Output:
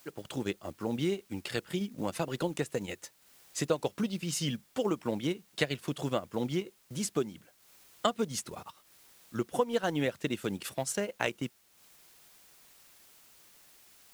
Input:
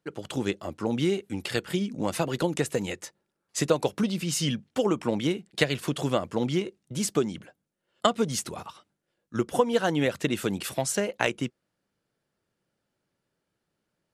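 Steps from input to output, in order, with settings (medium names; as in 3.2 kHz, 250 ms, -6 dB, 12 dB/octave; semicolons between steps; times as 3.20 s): added noise white -54 dBFS; transient shaper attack -1 dB, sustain -7 dB; trim -5 dB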